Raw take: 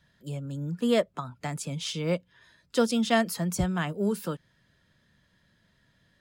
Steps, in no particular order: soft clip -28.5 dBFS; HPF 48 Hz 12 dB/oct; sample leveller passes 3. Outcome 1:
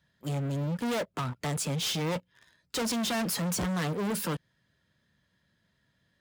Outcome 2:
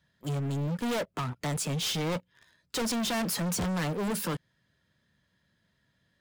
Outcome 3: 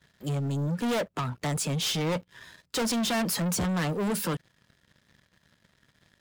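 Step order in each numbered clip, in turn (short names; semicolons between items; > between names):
sample leveller > soft clip > HPF; HPF > sample leveller > soft clip; soft clip > HPF > sample leveller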